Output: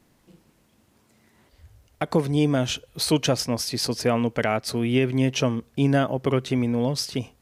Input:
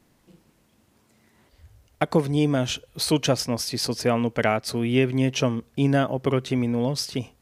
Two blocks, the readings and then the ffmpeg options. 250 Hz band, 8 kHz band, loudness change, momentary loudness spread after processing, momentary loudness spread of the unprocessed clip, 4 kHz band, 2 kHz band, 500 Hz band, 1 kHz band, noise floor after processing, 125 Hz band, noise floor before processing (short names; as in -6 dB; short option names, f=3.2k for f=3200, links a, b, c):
+0.5 dB, +0.5 dB, 0.0 dB, 4 LU, 5 LU, +0.5 dB, -0.5 dB, 0.0 dB, -0.5 dB, -63 dBFS, 0.0 dB, -63 dBFS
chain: -af "alimiter=level_in=9dB:limit=-1dB:release=50:level=0:latency=1,volume=-8.5dB"